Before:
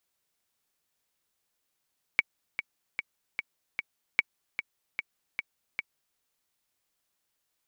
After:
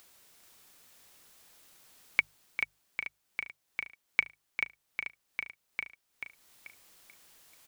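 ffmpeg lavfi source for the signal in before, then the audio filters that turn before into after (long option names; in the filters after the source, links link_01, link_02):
-f lavfi -i "aevalsrc='pow(10,(-8-10*gte(mod(t,5*60/150),60/150))/20)*sin(2*PI*2260*mod(t,60/150))*exp(-6.91*mod(t,60/150)/0.03)':duration=4:sample_rate=44100"
-filter_complex "[0:a]bandreject=frequency=50:width_type=h:width=6,bandreject=frequency=100:width_type=h:width=6,bandreject=frequency=150:width_type=h:width=6,acompressor=mode=upward:threshold=-44dB:ratio=2.5,asplit=2[link_01][link_02];[link_02]aecho=0:1:436|872|1308|1744:0.501|0.18|0.065|0.0234[link_03];[link_01][link_03]amix=inputs=2:normalize=0"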